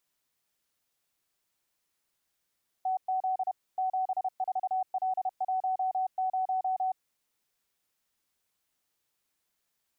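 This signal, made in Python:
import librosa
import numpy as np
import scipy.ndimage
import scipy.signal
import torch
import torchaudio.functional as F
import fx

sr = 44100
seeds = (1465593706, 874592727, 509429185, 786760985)

y = fx.morse(sr, text='TZ 74L10', wpm=31, hz=751.0, level_db=-26.0)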